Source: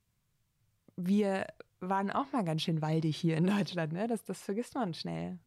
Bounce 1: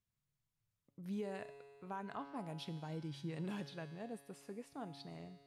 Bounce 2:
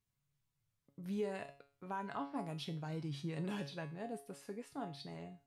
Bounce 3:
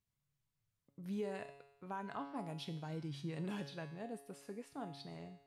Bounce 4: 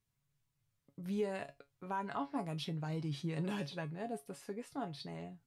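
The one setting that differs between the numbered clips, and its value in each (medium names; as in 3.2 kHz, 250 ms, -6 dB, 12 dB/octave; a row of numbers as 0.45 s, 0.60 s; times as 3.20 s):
feedback comb, decay: 2.1 s, 0.39 s, 0.87 s, 0.17 s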